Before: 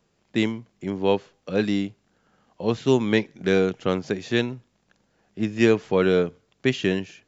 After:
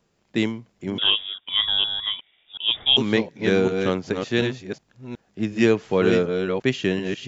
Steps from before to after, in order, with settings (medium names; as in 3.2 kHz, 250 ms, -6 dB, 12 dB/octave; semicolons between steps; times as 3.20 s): chunks repeated in reverse 368 ms, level -5 dB; 0.98–2.97 s: frequency inversion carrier 3.6 kHz